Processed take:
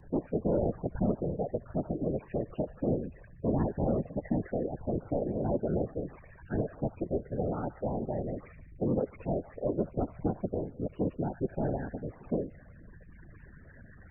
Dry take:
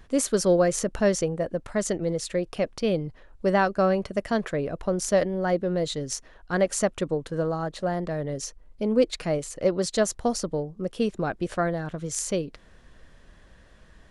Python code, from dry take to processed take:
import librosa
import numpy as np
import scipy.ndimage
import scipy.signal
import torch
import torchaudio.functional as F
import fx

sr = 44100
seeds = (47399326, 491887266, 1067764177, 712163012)

y = fx.delta_mod(x, sr, bps=16000, step_db=-38.5)
y = fx.echo_wet_highpass(y, sr, ms=73, feedback_pct=60, hz=1500.0, wet_db=-6.0)
y = fx.spec_topn(y, sr, count=16)
y = fx.whisperise(y, sr, seeds[0])
y = F.gain(torch.from_numpy(y), -4.0).numpy()